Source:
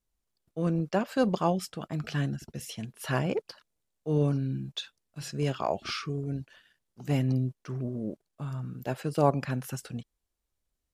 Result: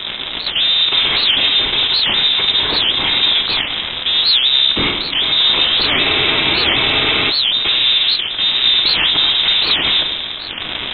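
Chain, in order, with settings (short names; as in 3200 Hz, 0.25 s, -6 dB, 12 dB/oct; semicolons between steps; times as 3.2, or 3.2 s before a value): per-bin compression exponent 0.4; sample leveller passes 5; in parallel at -2.5 dB: negative-ratio compressor -19 dBFS; on the sum: sample leveller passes 2; rotary speaker horn 7.5 Hz, later 1 Hz, at 2.88; hard clip -11 dBFS, distortion -9 dB; reverb, pre-delay 3 ms, DRR 3.5 dB; inverted band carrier 3800 Hz; spectral freeze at 5.89, 1.41 s; record warp 78 rpm, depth 250 cents; gain -3.5 dB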